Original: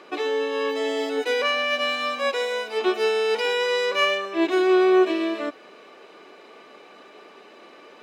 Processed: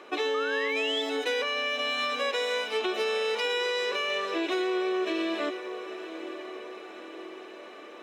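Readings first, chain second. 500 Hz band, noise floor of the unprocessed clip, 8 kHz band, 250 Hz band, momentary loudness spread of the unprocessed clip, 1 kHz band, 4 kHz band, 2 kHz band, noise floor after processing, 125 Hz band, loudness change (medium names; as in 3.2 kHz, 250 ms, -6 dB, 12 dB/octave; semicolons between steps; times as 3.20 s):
-7.0 dB, -48 dBFS, -3.0 dB, -8.0 dB, 8 LU, -6.0 dB, -2.5 dB, -4.0 dB, -45 dBFS, no reading, -6.0 dB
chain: peaking EQ 160 Hz -12.5 dB 0.37 oct; peak limiter -18 dBFS, peak gain reduction 10 dB; echo that smears into a reverb 902 ms, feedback 59%, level -13 dB; painted sound rise, 0.34–1.02 s, 1.2–3.6 kHz -30 dBFS; dynamic bell 4.2 kHz, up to +5 dB, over -42 dBFS, Q 0.77; band-stop 4.7 kHz, Q 6.4; compression, threshold -24 dBFS, peak gain reduction 4.5 dB; trim -1 dB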